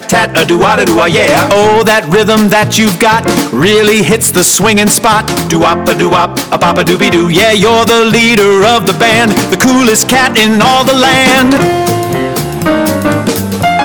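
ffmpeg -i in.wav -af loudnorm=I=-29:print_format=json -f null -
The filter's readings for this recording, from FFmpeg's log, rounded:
"input_i" : "-7.8",
"input_tp" : "0.0",
"input_lra" : "2.5",
"input_thresh" : "-17.8",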